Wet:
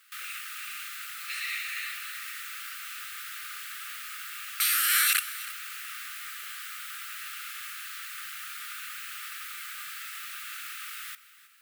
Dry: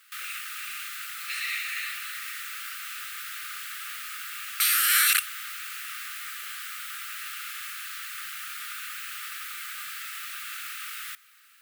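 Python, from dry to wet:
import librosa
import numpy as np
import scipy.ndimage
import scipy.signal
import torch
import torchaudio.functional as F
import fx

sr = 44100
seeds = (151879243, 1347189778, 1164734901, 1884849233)

y = x + 10.0 ** (-17.5 / 20.0) * np.pad(x, (int(319 * sr / 1000.0), 0))[:len(x)]
y = y * 10.0 ** (-2.5 / 20.0)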